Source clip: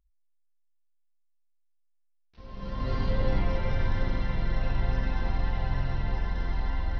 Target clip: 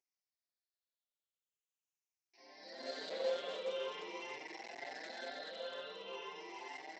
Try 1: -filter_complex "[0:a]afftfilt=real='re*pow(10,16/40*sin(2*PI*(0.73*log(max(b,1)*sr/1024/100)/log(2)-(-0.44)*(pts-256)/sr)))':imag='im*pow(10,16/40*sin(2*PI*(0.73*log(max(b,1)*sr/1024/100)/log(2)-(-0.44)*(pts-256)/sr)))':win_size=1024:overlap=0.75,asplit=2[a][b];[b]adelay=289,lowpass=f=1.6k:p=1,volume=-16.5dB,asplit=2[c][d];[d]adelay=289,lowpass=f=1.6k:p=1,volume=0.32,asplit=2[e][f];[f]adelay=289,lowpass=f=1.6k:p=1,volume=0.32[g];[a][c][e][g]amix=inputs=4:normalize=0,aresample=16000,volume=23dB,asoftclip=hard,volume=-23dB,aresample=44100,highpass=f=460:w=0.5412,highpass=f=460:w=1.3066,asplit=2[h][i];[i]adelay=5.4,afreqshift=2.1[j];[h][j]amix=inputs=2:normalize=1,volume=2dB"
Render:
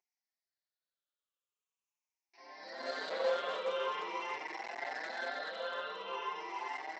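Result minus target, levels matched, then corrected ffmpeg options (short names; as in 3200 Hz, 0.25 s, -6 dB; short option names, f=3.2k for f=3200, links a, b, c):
1000 Hz band +5.0 dB
-filter_complex "[0:a]afftfilt=real='re*pow(10,16/40*sin(2*PI*(0.73*log(max(b,1)*sr/1024/100)/log(2)-(-0.44)*(pts-256)/sr)))':imag='im*pow(10,16/40*sin(2*PI*(0.73*log(max(b,1)*sr/1024/100)/log(2)-(-0.44)*(pts-256)/sr)))':win_size=1024:overlap=0.75,asplit=2[a][b];[b]adelay=289,lowpass=f=1.6k:p=1,volume=-16.5dB,asplit=2[c][d];[d]adelay=289,lowpass=f=1.6k:p=1,volume=0.32,asplit=2[e][f];[f]adelay=289,lowpass=f=1.6k:p=1,volume=0.32[g];[a][c][e][g]amix=inputs=4:normalize=0,aresample=16000,volume=23dB,asoftclip=hard,volume=-23dB,aresample=44100,highpass=f=460:w=0.5412,highpass=f=460:w=1.3066,equalizer=f=1.2k:w=0.97:g=-13.5,asplit=2[h][i];[i]adelay=5.4,afreqshift=2.1[j];[h][j]amix=inputs=2:normalize=1,volume=2dB"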